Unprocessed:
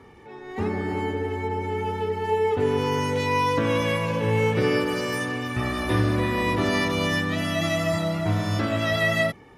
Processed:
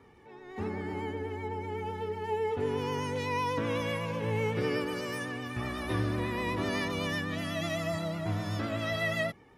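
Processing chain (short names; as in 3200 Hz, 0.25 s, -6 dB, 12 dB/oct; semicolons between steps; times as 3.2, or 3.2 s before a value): vibrato 8 Hz 41 cents; gain -8.5 dB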